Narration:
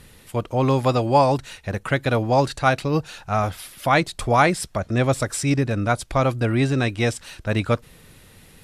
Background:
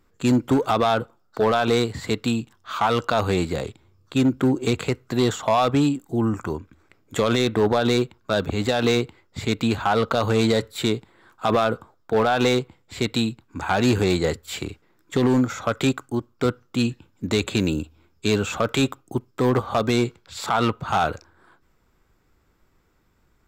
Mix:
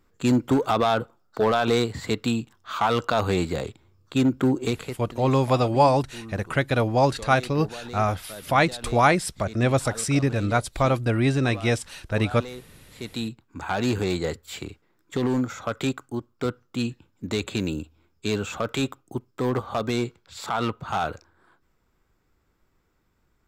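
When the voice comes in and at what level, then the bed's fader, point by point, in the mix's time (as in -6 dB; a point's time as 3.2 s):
4.65 s, -1.5 dB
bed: 4.62 s -1.5 dB
5.22 s -18.5 dB
12.75 s -18.5 dB
13.32 s -5 dB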